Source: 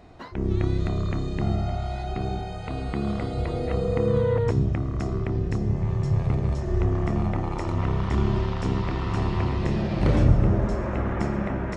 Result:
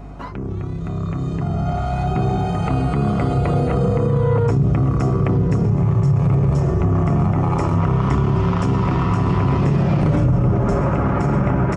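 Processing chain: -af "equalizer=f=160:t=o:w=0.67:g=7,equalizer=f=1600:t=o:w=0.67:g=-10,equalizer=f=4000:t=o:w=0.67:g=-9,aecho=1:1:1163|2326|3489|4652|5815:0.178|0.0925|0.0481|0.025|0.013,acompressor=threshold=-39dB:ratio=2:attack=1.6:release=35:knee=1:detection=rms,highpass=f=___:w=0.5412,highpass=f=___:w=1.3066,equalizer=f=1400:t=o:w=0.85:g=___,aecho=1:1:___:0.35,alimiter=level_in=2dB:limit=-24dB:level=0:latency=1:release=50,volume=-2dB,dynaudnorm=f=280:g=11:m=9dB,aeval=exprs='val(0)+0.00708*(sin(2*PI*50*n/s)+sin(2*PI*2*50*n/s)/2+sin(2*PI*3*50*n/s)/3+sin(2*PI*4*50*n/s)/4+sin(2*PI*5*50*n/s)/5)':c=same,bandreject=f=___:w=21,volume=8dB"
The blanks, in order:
48, 48, 10, 7.1, 1900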